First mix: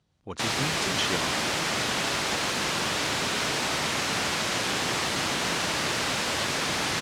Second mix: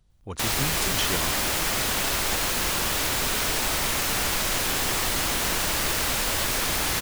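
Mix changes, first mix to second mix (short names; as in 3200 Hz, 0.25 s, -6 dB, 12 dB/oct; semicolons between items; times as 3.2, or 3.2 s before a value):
background: add bell 140 Hz -3 dB 1.5 oct; master: remove BPF 130–6300 Hz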